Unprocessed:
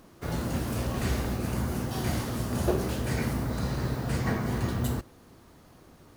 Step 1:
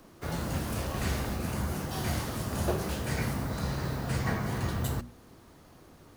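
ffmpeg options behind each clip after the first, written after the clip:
-filter_complex "[0:a]bandreject=f=60:t=h:w=6,bandreject=f=120:t=h:w=6,bandreject=f=180:t=h:w=6,bandreject=f=240:t=h:w=6,acrossover=split=260|450|6800[s0][s1][s2][s3];[s1]acompressor=threshold=0.00355:ratio=6[s4];[s0][s4][s2][s3]amix=inputs=4:normalize=0"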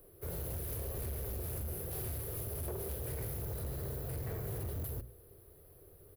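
-af "firequalizer=gain_entry='entry(100,0);entry(240,-21);entry(400,3);entry(880,-17);entry(1400,-14);entry(4600,-14);entry(7000,-20);entry(11000,9)':delay=0.05:min_phase=1,alimiter=level_in=1.12:limit=0.0631:level=0:latency=1:release=198,volume=0.891,asoftclip=type=hard:threshold=0.0178,volume=0.891"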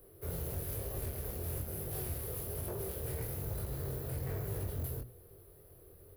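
-af "flanger=delay=20:depth=4.3:speed=1.1,volume=1.58"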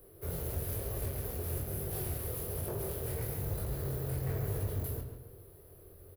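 -filter_complex "[0:a]asplit=2[s0][s1];[s1]adelay=142,lowpass=f=3100:p=1,volume=0.473,asplit=2[s2][s3];[s3]adelay=142,lowpass=f=3100:p=1,volume=0.39,asplit=2[s4][s5];[s5]adelay=142,lowpass=f=3100:p=1,volume=0.39,asplit=2[s6][s7];[s7]adelay=142,lowpass=f=3100:p=1,volume=0.39,asplit=2[s8][s9];[s9]adelay=142,lowpass=f=3100:p=1,volume=0.39[s10];[s0][s2][s4][s6][s8][s10]amix=inputs=6:normalize=0,volume=1.19"

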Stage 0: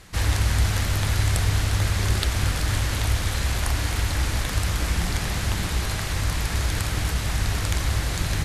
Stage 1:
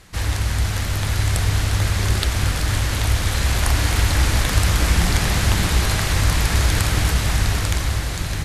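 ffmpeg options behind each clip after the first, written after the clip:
-af "dynaudnorm=f=210:g=11:m=2.66"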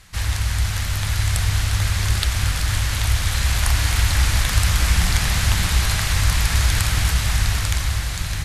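-af "equalizer=f=360:w=0.65:g=-11,volume=1.12"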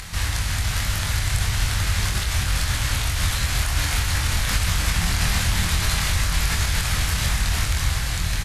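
-filter_complex "[0:a]acompressor=mode=upward:threshold=0.0447:ratio=2.5,alimiter=limit=0.237:level=0:latency=1:release=65,asplit=2[s0][s1];[s1]adelay=24,volume=0.668[s2];[s0][s2]amix=inputs=2:normalize=0"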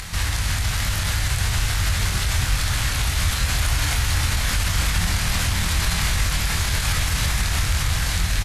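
-af "alimiter=limit=0.168:level=0:latency=1:release=49,aecho=1:1:906:0.473,volume=1.33"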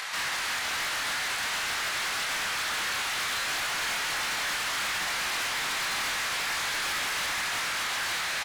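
-filter_complex "[0:a]highpass=630,asplit=2[s0][s1];[s1]highpass=f=720:p=1,volume=4.47,asoftclip=type=tanh:threshold=0.282[s2];[s0][s2]amix=inputs=2:normalize=0,lowpass=f=2200:p=1,volume=0.501,asoftclip=type=hard:threshold=0.0473,volume=0.841"

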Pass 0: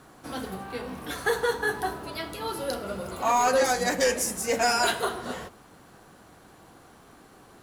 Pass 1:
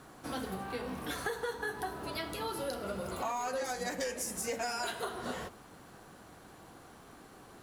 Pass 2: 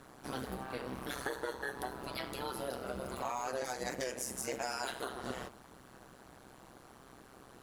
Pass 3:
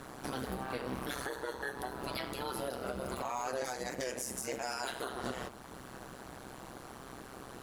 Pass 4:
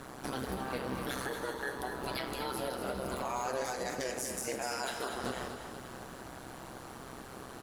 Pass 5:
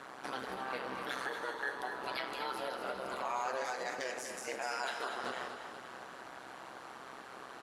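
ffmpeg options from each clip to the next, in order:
-af "acompressor=threshold=0.0251:ratio=6,volume=0.841"
-af "tremolo=f=130:d=0.947,volume=1.19"
-af "alimiter=level_in=3.16:limit=0.0631:level=0:latency=1:release=462,volume=0.316,volume=2.51"
-af "aecho=1:1:243|486|729|972|1215|1458:0.398|0.203|0.104|0.0528|0.0269|0.0137,volume=1.12"
-af "bandpass=f=1600:t=q:w=0.53:csg=0,volume=1.19"

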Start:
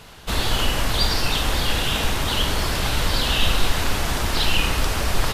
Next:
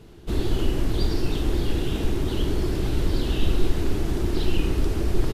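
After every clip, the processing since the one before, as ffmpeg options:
-af "firequalizer=gain_entry='entry(240,0);entry(350,9);entry(510,-7);entry(1000,-14)':delay=0.05:min_phase=1"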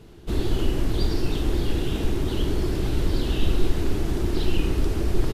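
-af anull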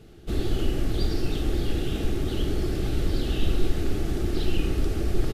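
-af "asuperstop=centerf=980:order=4:qfactor=5.4,volume=0.794"

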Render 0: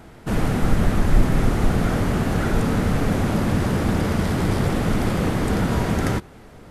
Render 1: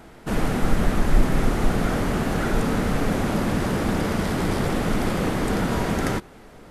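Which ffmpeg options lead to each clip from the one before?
-af "equalizer=f=92:w=0.87:g=-7"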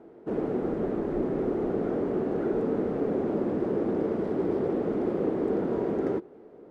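-af "bandpass=f=390:t=q:w=2.7:csg=0,volume=1.5"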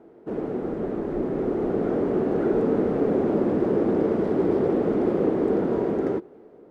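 -af "dynaudnorm=f=640:g=5:m=1.88"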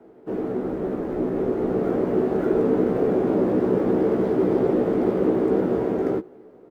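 -filter_complex "[0:a]asplit=2[s0][s1];[s1]adelay=16,volume=0.631[s2];[s0][s2]amix=inputs=2:normalize=0,acrossover=split=200|540|1600[s3][s4][s5][s6];[s6]acrusher=bits=3:mode=log:mix=0:aa=0.000001[s7];[s3][s4][s5][s7]amix=inputs=4:normalize=0"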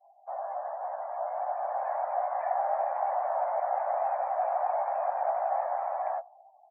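-af "afftdn=nr=35:nf=-41,highpass=f=240:t=q:w=0.5412,highpass=f=240:t=q:w=1.307,lowpass=f=3100:t=q:w=0.5176,lowpass=f=3100:t=q:w=0.7071,lowpass=f=3100:t=q:w=1.932,afreqshift=350,volume=0.398"

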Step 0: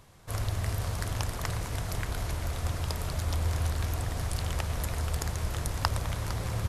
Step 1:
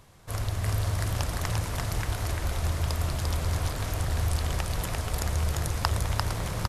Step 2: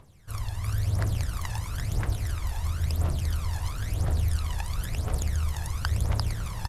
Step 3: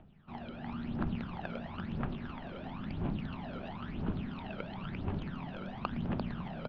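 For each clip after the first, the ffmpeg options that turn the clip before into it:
-af "aecho=1:1:346|802:0.708|0.282,volume=1.12"
-af "aphaser=in_gain=1:out_gain=1:delay=1.2:decay=0.7:speed=0.98:type=triangular,volume=0.422"
-af "highpass=f=170:t=q:w=0.5412,highpass=f=170:t=q:w=1.307,lowpass=f=3100:t=q:w=0.5176,lowpass=f=3100:t=q:w=0.7071,lowpass=f=3100:t=q:w=1.932,afreqshift=-340,equalizer=f=500:t=o:w=1:g=-7,equalizer=f=1000:t=o:w=1:g=-4,equalizer=f=2000:t=o:w=1:g=-11,volume=1.88"

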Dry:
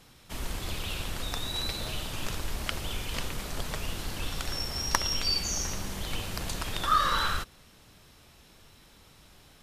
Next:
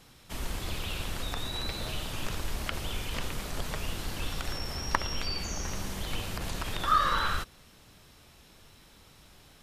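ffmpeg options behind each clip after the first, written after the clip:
-filter_complex "[0:a]acrossover=split=3100[s0][s1];[s1]acompressor=threshold=0.0112:ratio=4:attack=1:release=60[s2];[s0][s2]amix=inputs=2:normalize=0"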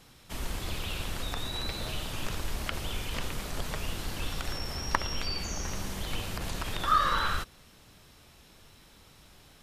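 -af anull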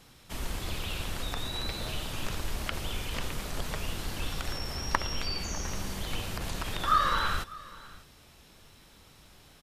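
-af "aecho=1:1:599:0.0944"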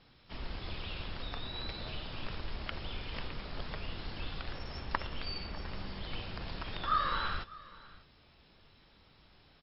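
-af "volume=0.531" -ar 12000 -c:a libmp3lame -b:a 32k

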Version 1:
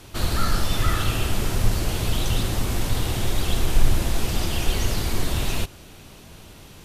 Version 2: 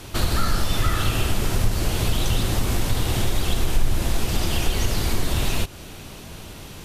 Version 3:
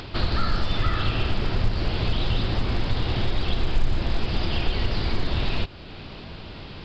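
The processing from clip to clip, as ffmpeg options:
-af "acompressor=threshold=0.0501:ratio=2,volume=2"
-af "acompressor=mode=upward:threshold=0.0316:ratio=2.5,aresample=11025,aresample=44100,volume=0.794" -ar 16000 -c:a pcm_alaw

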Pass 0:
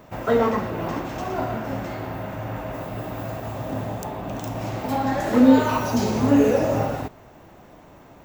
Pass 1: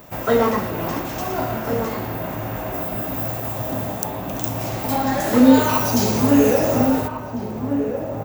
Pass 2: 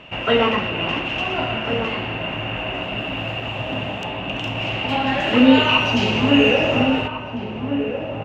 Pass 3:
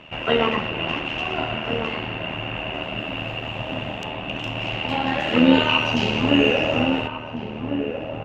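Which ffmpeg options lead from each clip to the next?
-filter_complex "[0:a]aemphasis=mode=production:type=50kf,asplit=2[s0][s1];[s1]adelay=1399,volume=0.447,highshelf=f=4000:g=-31.5[s2];[s0][s2]amix=inputs=2:normalize=0,volume=1.26"
-af "lowpass=f=2800:t=q:w=15,volume=0.891"
-af "tremolo=f=78:d=0.621"

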